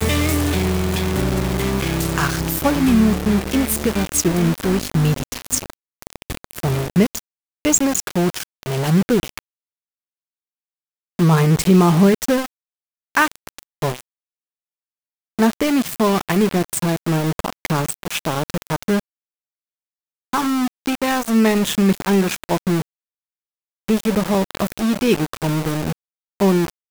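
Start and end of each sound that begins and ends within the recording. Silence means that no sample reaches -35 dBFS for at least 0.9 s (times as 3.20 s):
11.19–14.01 s
15.39–19.00 s
20.33–22.82 s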